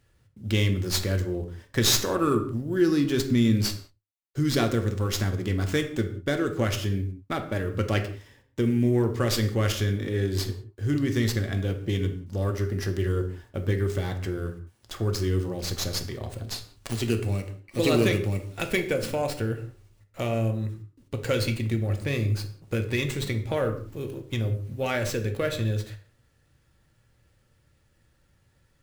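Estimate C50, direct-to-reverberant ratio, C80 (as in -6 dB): 11.0 dB, 5.0 dB, 14.5 dB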